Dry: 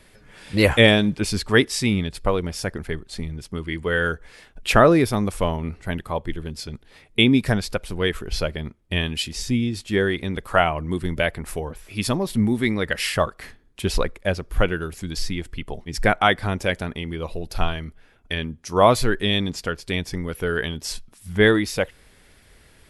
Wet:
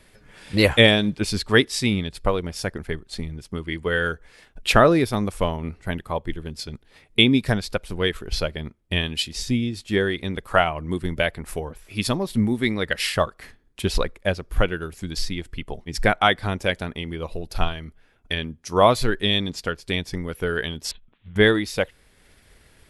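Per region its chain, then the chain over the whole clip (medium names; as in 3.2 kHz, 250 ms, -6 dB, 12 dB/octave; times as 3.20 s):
20.91–21.36 s: steep low-pass 3.6 kHz 72 dB/octave + compression 4:1, threshold -35 dBFS + valve stage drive 28 dB, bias 0.5
whole clip: dynamic bell 3.9 kHz, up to +4 dB, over -40 dBFS, Q 2.2; transient shaper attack +2 dB, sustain -3 dB; trim -1.5 dB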